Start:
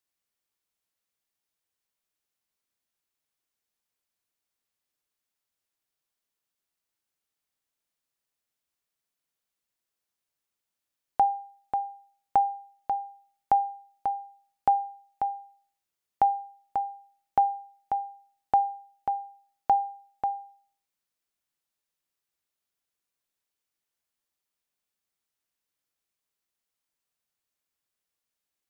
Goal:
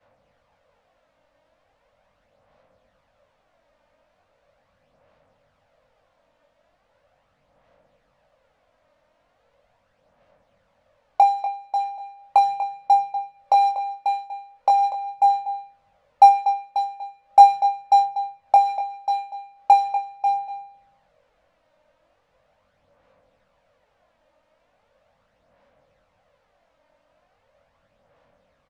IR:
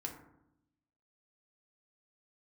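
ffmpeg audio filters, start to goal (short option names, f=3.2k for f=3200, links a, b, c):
-filter_complex "[0:a]aeval=exprs='val(0)+0.5*0.0299*sgn(val(0))':c=same,agate=range=-33dB:threshold=-25dB:ratio=3:detection=peak,acrossover=split=170|360|940[a][b][c][d];[c]highpass=f=550:t=q:w=4.9[e];[a][b][e][d]amix=inputs=4:normalize=0,aphaser=in_gain=1:out_gain=1:delay=3.3:decay=0.45:speed=0.39:type=sinusoidal,aecho=1:1:242:0.299,adynamicsmooth=sensitivity=2.5:basefreq=1.6k,asplit=2[f][g];[g]adelay=21,volume=-5dB[h];[f][h]amix=inputs=2:normalize=0,volume=2.5dB"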